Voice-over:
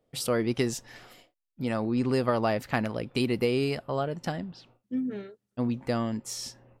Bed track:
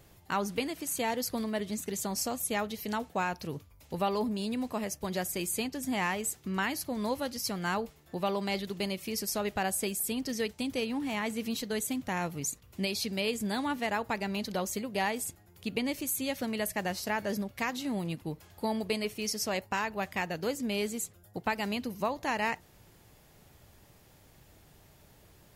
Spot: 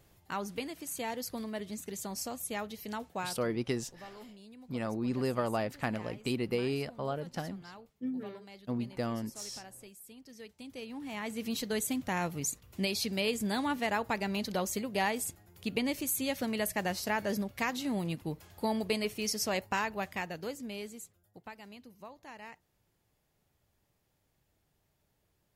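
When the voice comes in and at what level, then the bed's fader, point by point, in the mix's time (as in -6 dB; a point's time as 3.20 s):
3.10 s, -6.0 dB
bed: 3.20 s -5.5 dB
3.60 s -19.5 dB
10.22 s -19.5 dB
11.60 s 0 dB
19.79 s 0 dB
21.64 s -17.5 dB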